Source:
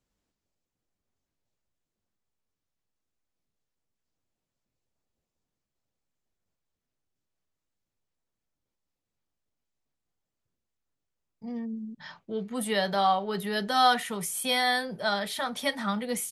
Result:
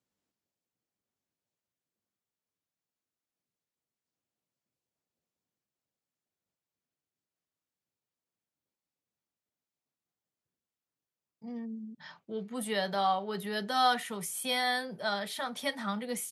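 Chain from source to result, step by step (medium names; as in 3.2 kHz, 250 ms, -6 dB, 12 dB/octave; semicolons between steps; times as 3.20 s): high-pass 120 Hz; trim -4.5 dB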